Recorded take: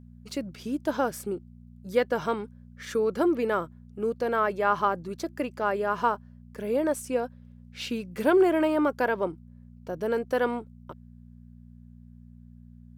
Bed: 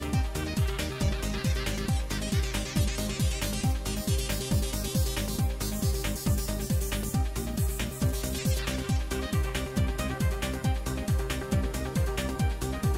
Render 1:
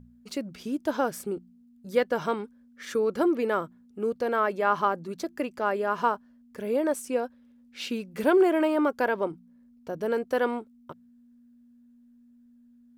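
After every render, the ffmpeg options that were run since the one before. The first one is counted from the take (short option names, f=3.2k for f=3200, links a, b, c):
-af "bandreject=f=60:t=h:w=4,bandreject=f=120:t=h:w=4,bandreject=f=180:t=h:w=4"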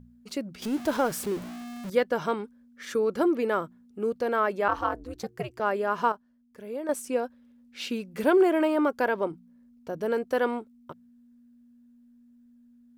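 -filter_complex "[0:a]asettb=1/sr,asplit=3[a][b][c];[a]atrim=end=0.624[d];[b]atrim=start=0.62:end=1.9,asetpts=PTS-STARTPTS,afade=t=in:d=0.004:c=qsin,afade=t=out:st=1.276:d=0.004:c=qsin,aeval=exprs='val(0)+0.5*0.02*sgn(val(0))':c=same[e];[c]atrim=start=1.896[f];[d][e]acrossfade=d=0.004:c1=hsin:c2=qsin[g];[g][f]acrossfade=d=0.004:c1=qsin:c2=hsin,asettb=1/sr,asplit=3[h][i][j];[h]atrim=end=4.684[k];[i]atrim=start=4.68:end=5.6,asetpts=PTS-STARTPTS,afade=t=in:d=0.004:c=qsin,afade=t=out:st=0.916:d=0.004:c=qsin,aeval=exprs='val(0)*sin(2*PI*120*n/s)':c=same[l];[j]atrim=start=5.596[m];[k][l]acrossfade=d=0.004:c1=hsin:c2=qsin[n];[n][m]acrossfade=d=0.004:c1=qsin:c2=hsin,asplit=3[o][p][q];[o]atrim=end=6.122[r];[p]atrim=start=6.118:end=6.892,asetpts=PTS-STARTPTS,volume=-8.5dB[s];[q]atrim=start=6.888[t];[r][s]acrossfade=d=0.004:c1=hsin:c2=hsin[u];[u][t]acrossfade=d=0.004:c1=hsin:c2=hsin"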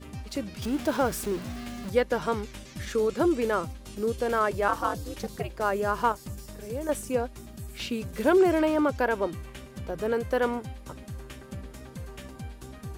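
-filter_complex "[1:a]volume=-12dB[a];[0:a][a]amix=inputs=2:normalize=0"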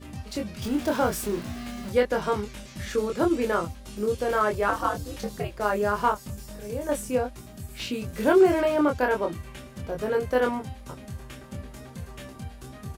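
-filter_complex "[0:a]asplit=2[a][b];[b]adelay=24,volume=-3.5dB[c];[a][c]amix=inputs=2:normalize=0"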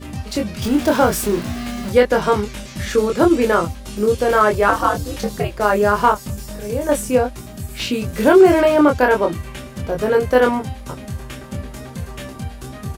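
-af "volume=9.5dB,alimiter=limit=-2dB:level=0:latency=1"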